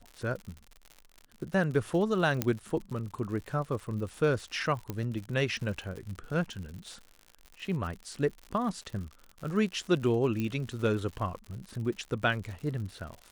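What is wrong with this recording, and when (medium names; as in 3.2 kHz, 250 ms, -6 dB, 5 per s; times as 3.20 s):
crackle 95 per s -38 dBFS
2.42 s: pop -11 dBFS
4.90 s: pop -20 dBFS
10.40 s: pop -20 dBFS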